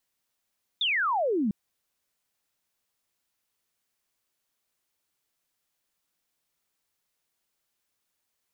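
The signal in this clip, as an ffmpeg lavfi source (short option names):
-f lavfi -i "aevalsrc='0.0708*clip(t/0.002,0,1)*clip((0.7-t)/0.002,0,1)*sin(2*PI*3700*0.7/log(190/3700)*(exp(log(190/3700)*t/0.7)-1))':d=0.7:s=44100"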